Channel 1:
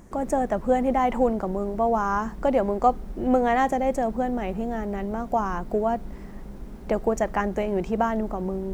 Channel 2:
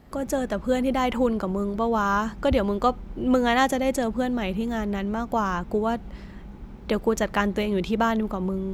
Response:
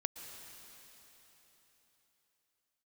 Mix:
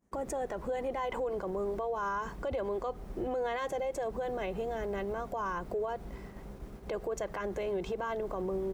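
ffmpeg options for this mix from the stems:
-filter_complex "[0:a]acompressor=threshold=0.0631:ratio=2,volume=0.75[s0];[1:a]lowpass=f=2500:p=1,adelay=1.9,volume=0.422[s1];[s0][s1]amix=inputs=2:normalize=0,agate=range=0.0224:threshold=0.0141:ratio=3:detection=peak,highpass=f=86:p=1,alimiter=level_in=1.41:limit=0.0631:level=0:latency=1:release=69,volume=0.708"

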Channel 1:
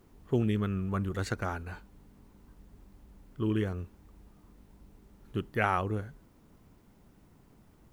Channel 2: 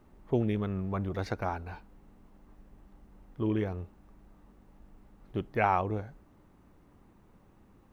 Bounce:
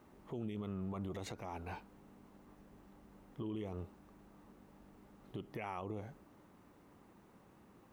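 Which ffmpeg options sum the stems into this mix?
-filter_complex "[0:a]volume=0.316[s0];[1:a]acompressor=threshold=0.02:ratio=6,volume=1.12[s1];[s0][s1]amix=inputs=2:normalize=0,highpass=f=220:p=1,alimiter=level_in=2.66:limit=0.0631:level=0:latency=1:release=45,volume=0.376"

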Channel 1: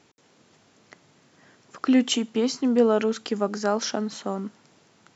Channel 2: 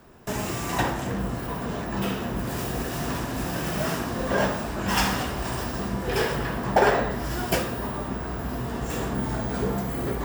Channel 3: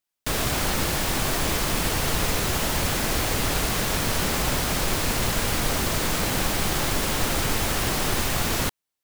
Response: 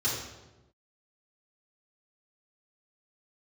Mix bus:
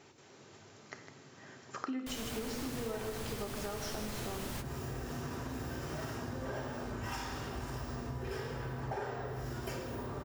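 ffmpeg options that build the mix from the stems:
-filter_complex "[0:a]acompressor=threshold=0.0224:ratio=1.5,volume=1,asplit=4[s0][s1][s2][s3];[s1]volume=0.266[s4];[s2]volume=0.376[s5];[1:a]adelay=2150,volume=0.251,asplit=2[s6][s7];[s7]volume=0.596[s8];[2:a]adelay=1800,volume=0.473[s9];[s3]apad=whole_len=477695[s10];[s9][s10]sidechaingate=range=0.0224:threshold=0.00355:ratio=16:detection=peak[s11];[3:a]atrim=start_sample=2205[s12];[s4][s8]amix=inputs=2:normalize=0[s13];[s13][s12]afir=irnorm=-1:irlink=0[s14];[s5]aecho=0:1:155:1[s15];[s0][s6][s11][s14][s15]amix=inputs=5:normalize=0,acompressor=threshold=0.0141:ratio=6"

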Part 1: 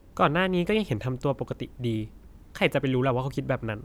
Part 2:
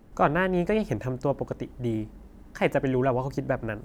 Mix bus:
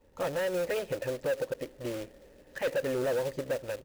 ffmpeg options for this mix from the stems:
-filter_complex "[0:a]equalizer=f=890:t=o:w=0.22:g=12.5,volume=0.211[s0];[1:a]asplit=3[s1][s2][s3];[s1]bandpass=f=530:t=q:w=8,volume=1[s4];[s2]bandpass=f=1840:t=q:w=8,volume=0.501[s5];[s3]bandpass=f=2480:t=q:w=8,volume=0.355[s6];[s4][s5][s6]amix=inputs=3:normalize=0,dynaudnorm=f=130:g=7:m=2.51,acrusher=bits=2:mode=log:mix=0:aa=0.000001,adelay=8.4,volume=1.41[s7];[s0][s7]amix=inputs=2:normalize=0,asoftclip=type=tanh:threshold=0.0794,alimiter=level_in=1.12:limit=0.0631:level=0:latency=1:release=199,volume=0.891"

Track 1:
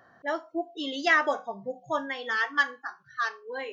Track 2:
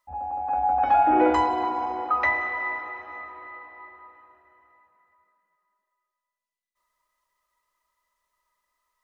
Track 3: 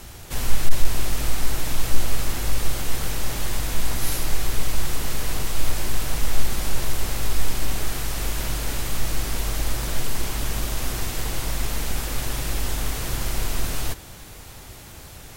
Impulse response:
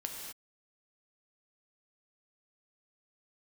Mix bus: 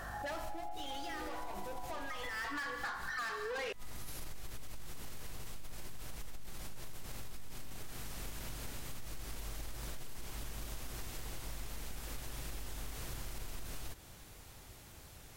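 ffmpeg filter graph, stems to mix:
-filter_complex "[0:a]alimiter=limit=0.106:level=0:latency=1:release=350,asplit=2[s0][s1];[s1]highpass=f=720:p=1,volume=28.2,asoftclip=type=tanh:threshold=0.106[s2];[s0][s2]amix=inputs=2:normalize=0,lowpass=f=6300:p=1,volume=0.501,volume=0.944,afade=t=in:st=2.29:d=0.47:silence=0.266073,asplit=3[s3][s4][s5];[s4]volume=0.531[s6];[1:a]volume=0.266[s7];[2:a]alimiter=limit=0.178:level=0:latency=1:release=18,volume=0.224[s8];[s5]apad=whole_len=677628[s9];[s8][s9]sidechaincompress=threshold=0.00891:ratio=8:attack=16:release=138[s10];[s3][s7]amix=inputs=2:normalize=0,aeval=exprs='val(0)+0.00355*(sin(2*PI*50*n/s)+sin(2*PI*2*50*n/s)/2+sin(2*PI*3*50*n/s)/3+sin(2*PI*4*50*n/s)/4+sin(2*PI*5*50*n/s)/5)':c=same,acompressor=threshold=0.0178:ratio=6,volume=1[s11];[3:a]atrim=start_sample=2205[s12];[s6][s12]afir=irnorm=-1:irlink=0[s13];[s10][s11][s13]amix=inputs=3:normalize=0,acompressor=threshold=0.0126:ratio=6"

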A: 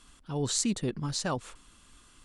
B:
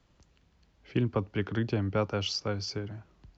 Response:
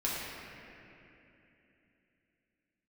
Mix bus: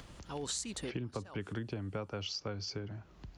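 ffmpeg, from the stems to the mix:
-filter_complex "[0:a]acompressor=threshold=0.02:ratio=2,highpass=f=530:p=1,dynaudnorm=f=110:g=5:m=3.55,volume=0.422[s0];[1:a]acompressor=mode=upward:threshold=0.0178:ratio=2.5,volume=0.708,asplit=2[s1][s2];[s2]apad=whole_len=99034[s3];[s0][s3]sidechaincompress=threshold=0.00794:ratio=8:attack=6:release=701[s4];[s4][s1]amix=inputs=2:normalize=0,acompressor=threshold=0.0178:ratio=6"

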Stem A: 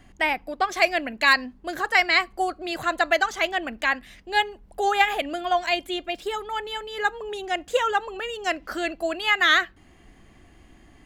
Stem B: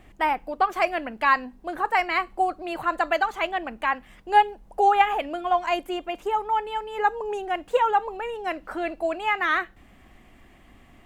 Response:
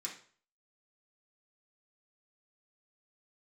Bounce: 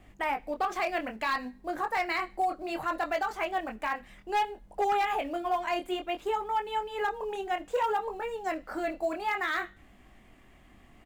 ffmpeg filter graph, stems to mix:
-filter_complex "[0:a]acrusher=bits=5:mode=log:mix=0:aa=0.000001,volume=0.141,asplit=2[s0][s1];[s1]volume=0.422[s2];[1:a]flanger=delay=19.5:depth=6.1:speed=0.61,asoftclip=type=hard:threshold=0.119,adelay=0.4,volume=0.841[s3];[2:a]atrim=start_sample=2205[s4];[s2][s4]afir=irnorm=-1:irlink=0[s5];[s0][s3][s5]amix=inputs=3:normalize=0,alimiter=limit=0.0891:level=0:latency=1:release=67"

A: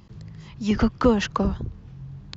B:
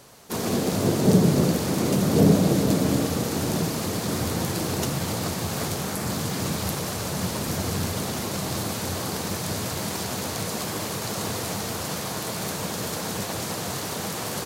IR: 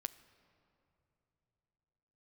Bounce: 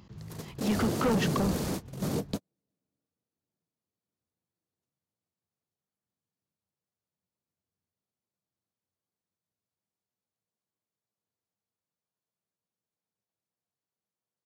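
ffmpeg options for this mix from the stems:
-filter_complex "[0:a]highpass=f=88:p=1,volume=0.794,asplit=2[s0][s1];[1:a]volume=0.473[s2];[s1]apad=whole_len=637380[s3];[s2][s3]sidechaingate=range=0.001:threshold=0.00794:ratio=16:detection=peak[s4];[s0][s4]amix=inputs=2:normalize=0,asoftclip=type=tanh:threshold=0.0794"

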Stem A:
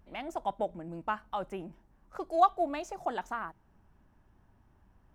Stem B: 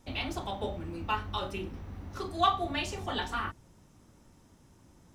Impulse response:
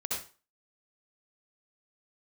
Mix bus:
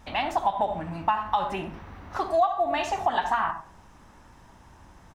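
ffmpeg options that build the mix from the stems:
-filter_complex "[0:a]aecho=1:1:1.1:0.73,volume=1.12,asplit=2[s0][s1];[s1]volume=0.376[s2];[1:a]acompressor=threshold=0.00708:ratio=2,equalizer=f=2500:w=0.39:g=5.5,volume=-1,adelay=1.1,volume=0.944[s3];[2:a]atrim=start_sample=2205[s4];[s2][s4]afir=irnorm=-1:irlink=0[s5];[s0][s3][s5]amix=inputs=3:normalize=0,equalizer=f=1100:t=o:w=2.6:g=8.5,acompressor=threshold=0.1:ratio=6"

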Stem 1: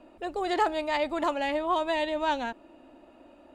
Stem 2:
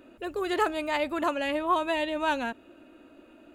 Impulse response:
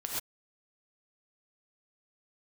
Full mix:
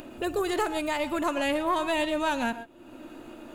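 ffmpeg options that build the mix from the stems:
-filter_complex "[0:a]aeval=exprs='max(val(0),0)':c=same,volume=0.224,asplit=3[s0][s1][s2];[s1]volume=0.668[s3];[1:a]bass=f=250:g=9,treble=f=4000:g=9,alimiter=limit=0.0708:level=0:latency=1:release=260,volume=1.41,asplit=2[s4][s5];[s5]volume=0.15[s6];[s2]apad=whole_len=156314[s7];[s4][s7]sidechaingate=range=0.0224:threshold=0.001:ratio=16:detection=peak[s8];[2:a]atrim=start_sample=2205[s9];[s3][s6]amix=inputs=2:normalize=0[s10];[s10][s9]afir=irnorm=-1:irlink=0[s11];[s0][s8][s11]amix=inputs=3:normalize=0,lowshelf=f=87:g=-6.5,acompressor=mode=upward:threshold=0.0355:ratio=2.5"

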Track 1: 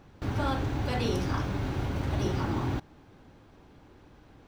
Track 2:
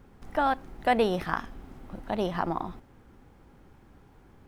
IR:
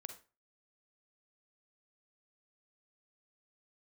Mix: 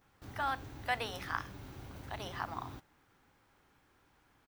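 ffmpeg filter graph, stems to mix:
-filter_complex "[0:a]aemphasis=mode=production:type=50fm,volume=0.133[s0];[1:a]highpass=1100,volume=-1,adelay=12,volume=0.631[s1];[s0][s1]amix=inputs=2:normalize=0"

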